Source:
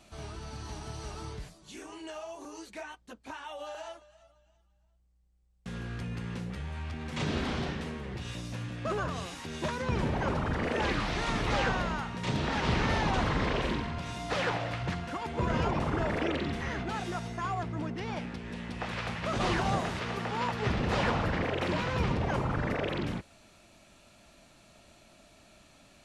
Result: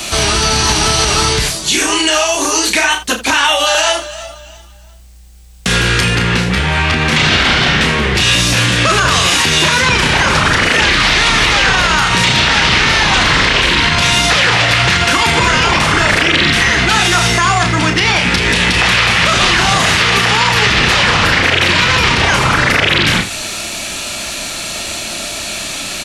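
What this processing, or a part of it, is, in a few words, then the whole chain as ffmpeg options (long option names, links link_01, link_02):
mastering chain: -filter_complex "[0:a]asettb=1/sr,asplit=3[link_01][link_02][link_03];[link_01]atrim=end=6.154[link_04];[link_02]atrim=start=6.15:end=8.15,asetpts=PTS-STARTPTS,afade=type=in:duration=0.004:curve=qsin,afade=type=out:start_time=1.996:duration=0.004:curve=qsin,highshelf=frequency=4500:gain=-12[link_05];[link_03]atrim=start=8.146[link_06];[link_04][link_05]acrossfade=duration=0.004:curve1=hsin:curve2=qsin[link_07];[link_07][link_06]acrossfade=duration=0.004:curve1=qsin:curve2=hsin,equalizer=frequency=360:width_type=o:width=0.77:gain=3.5,aecho=1:1:32|79:0.501|0.178,acrossover=split=190|1100|3800[link_08][link_09][link_10][link_11];[link_08]acompressor=threshold=-39dB:ratio=4[link_12];[link_09]acompressor=threshold=-44dB:ratio=4[link_13];[link_10]acompressor=threshold=-40dB:ratio=4[link_14];[link_11]acompressor=threshold=-54dB:ratio=4[link_15];[link_12][link_13][link_14][link_15]amix=inputs=4:normalize=0,acompressor=threshold=-42dB:ratio=1.5,tiltshelf=frequency=1400:gain=-7.5,asoftclip=type=hard:threshold=-30.5dB,alimiter=level_in=34.5dB:limit=-1dB:release=50:level=0:latency=1,volume=-1dB"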